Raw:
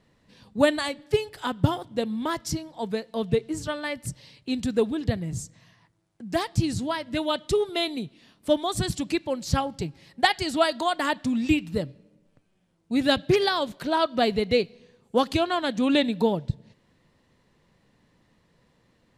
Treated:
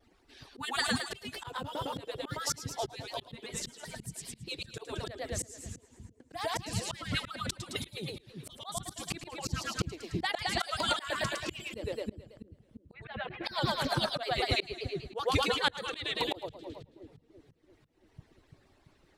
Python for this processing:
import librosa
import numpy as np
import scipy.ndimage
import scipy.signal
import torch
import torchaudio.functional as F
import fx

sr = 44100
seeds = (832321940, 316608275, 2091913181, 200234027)

y = fx.hpss_only(x, sr, part='percussive')
y = fx.lowpass(y, sr, hz=2300.0, slope=24, at=(12.92, 13.43), fade=0.02)
y = fx.echo_split(y, sr, split_hz=350.0, low_ms=338, high_ms=108, feedback_pct=52, wet_db=-4.0)
y = fx.auto_swell(y, sr, attack_ms=313.0)
y = fx.vibrato_shape(y, sr, shape='saw_down', rate_hz=5.2, depth_cents=100.0)
y = y * librosa.db_to_amplitude(3.0)